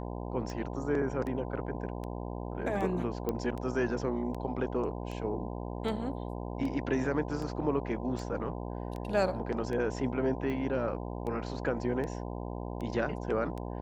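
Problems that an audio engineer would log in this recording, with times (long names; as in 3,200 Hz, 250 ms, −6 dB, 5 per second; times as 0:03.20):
mains buzz 60 Hz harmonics 17 −38 dBFS
scratch tick 78 rpm −27 dBFS
0:03.29: click −19 dBFS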